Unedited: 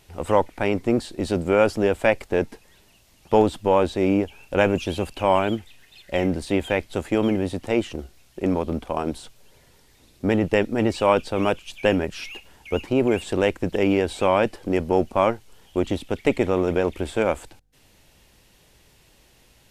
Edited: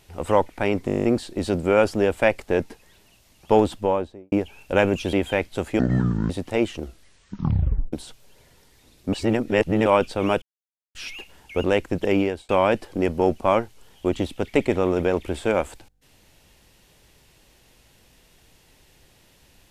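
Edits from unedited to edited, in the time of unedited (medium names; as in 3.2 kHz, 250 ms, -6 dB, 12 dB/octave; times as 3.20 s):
0.86 s: stutter 0.02 s, 10 plays
3.50–4.14 s: studio fade out
4.95–6.51 s: delete
7.17–7.46 s: speed 57%
8.00 s: tape stop 1.09 s
10.29–11.02 s: reverse
11.58–12.11 s: mute
12.80–13.35 s: delete
13.88–14.20 s: fade out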